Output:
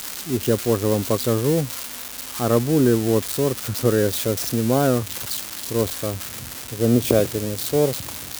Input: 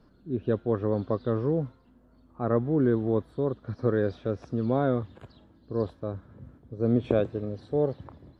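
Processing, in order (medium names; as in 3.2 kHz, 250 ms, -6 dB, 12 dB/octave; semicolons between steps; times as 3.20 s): zero-crossing glitches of -21 dBFS; trim +6.5 dB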